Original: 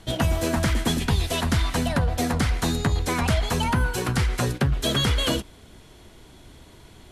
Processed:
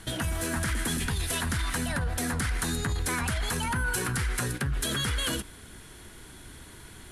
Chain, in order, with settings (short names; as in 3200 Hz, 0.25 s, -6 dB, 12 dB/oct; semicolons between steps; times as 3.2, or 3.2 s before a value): limiter -22.5 dBFS, peak gain reduction 11 dB; fifteen-band EQ 630 Hz -5 dB, 1600 Hz +8 dB, 10000 Hz +12 dB